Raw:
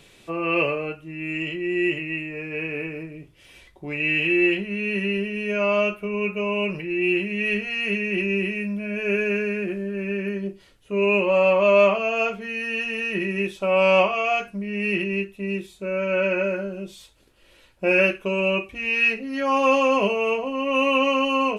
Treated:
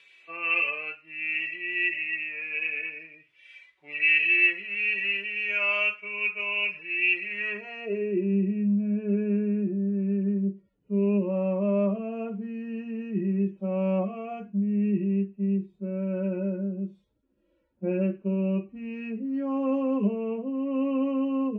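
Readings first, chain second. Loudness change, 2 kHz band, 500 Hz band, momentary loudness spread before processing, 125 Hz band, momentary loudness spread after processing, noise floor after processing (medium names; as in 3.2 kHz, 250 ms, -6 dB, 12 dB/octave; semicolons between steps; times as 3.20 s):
-4.0 dB, -3.0 dB, -9.5 dB, 11 LU, +2.0 dB, 11 LU, -69 dBFS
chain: harmonic-percussive separation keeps harmonic; band-pass sweep 2.3 kHz -> 210 Hz, 7.20–8.34 s; trim +4.5 dB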